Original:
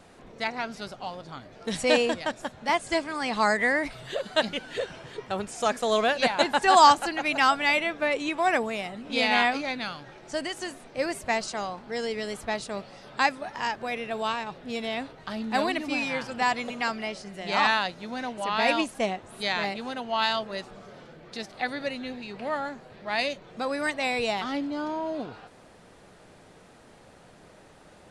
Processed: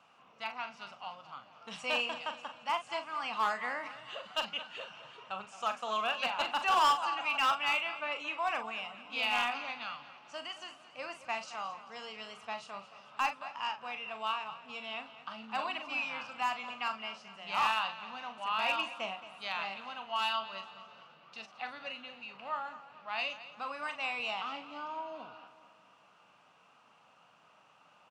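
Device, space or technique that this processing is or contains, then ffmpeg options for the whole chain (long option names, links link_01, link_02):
megaphone: -filter_complex "[0:a]highpass=680,lowpass=3500,firequalizer=gain_entry='entry(150,0);entry(370,-21);entry(1200,-8);entry(1800,-23);entry(2600,-13);entry(3900,-18);entry(5800,-10)':delay=0.05:min_phase=1,equalizer=frequency=2800:width_type=o:width=0.21:gain=9,aecho=1:1:220|440|660|880|1100:0.178|0.0871|0.0427|0.0209|0.0103,asoftclip=type=hard:threshold=-30.5dB,asplit=2[link_01][link_02];[link_02]adelay=41,volume=-9dB[link_03];[link_01][link_03]amix=inputs=2:normalize=0,volume=7dB"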